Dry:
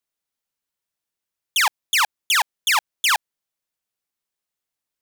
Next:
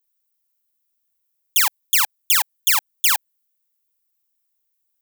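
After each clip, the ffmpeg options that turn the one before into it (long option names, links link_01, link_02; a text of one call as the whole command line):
ffmpeg -i in.wav -af "aemphasis=mode=production:type=bsi,volume=-5dB" out.wav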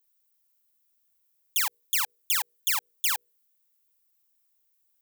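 ffmpeg -i in.wav -af "bandreject=frequency=60:width_type=h:width=6,bandreject=frequency=120:width_type=h:width=6,bandreject=frequency=180:width_type=h:width=6,bandreject=frequency=240:width_type=h:width=6,bandreject=frequency=300:width_type=h:width=6,bandreject=frequency=360:width_type=h:width=6,bandreject=frequency=420:width_type=h:width=6,bandreject=frequency=480:width_type=h:width=6,alimiter=limit=-13dB:level=0:latency=1:release=62,volume=1.5dB" out.wav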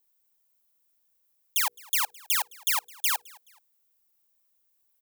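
ffmpeg -i in.wav -filter_complex "[0:a]acrossover=split=910|7300[link_01][link_02][link_03];[link_01]acontrast=73[link_04];[link_04][link_02][link_03]amix=inputs=3:normalize=0,aecho=1:1:213|426:0.0631|0.0227" out.wav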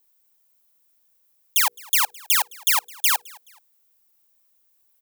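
ffmpeg -i in.wav -af "highpass=130,volume=6.5dB" out.wav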